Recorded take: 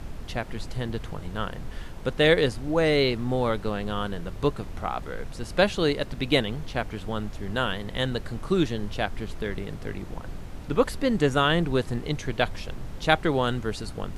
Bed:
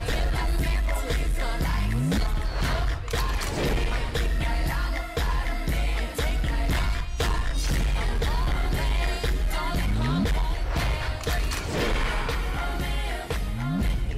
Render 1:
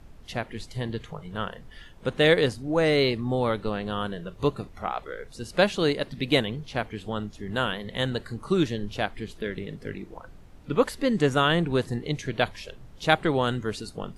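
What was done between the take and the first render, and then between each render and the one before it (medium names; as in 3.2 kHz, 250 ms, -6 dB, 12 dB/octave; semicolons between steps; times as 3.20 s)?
noise print and reduce 12 dB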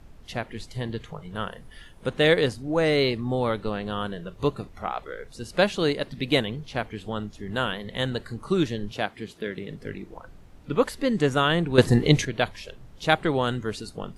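1.35–2.09 s: peaking EQ 9.9 kHz +11.5 dB 0.27 oct; 8.91–9.70 s: high-pass 120 Hz; 11.78–12.25 s: gain +11 dB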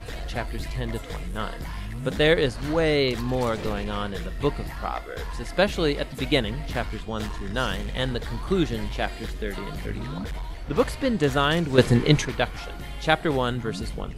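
add bed -8.5 dB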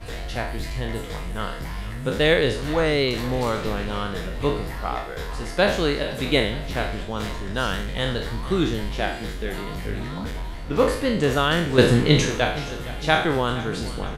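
spectral sustain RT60 0.57 s; feedback delay 468 ms, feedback 59%, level -16.5 dB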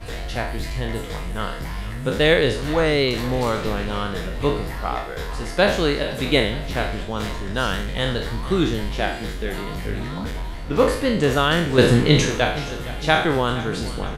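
trim +2 dB; peak limiter -2 dBFS, peak gain reduction 1.5 dB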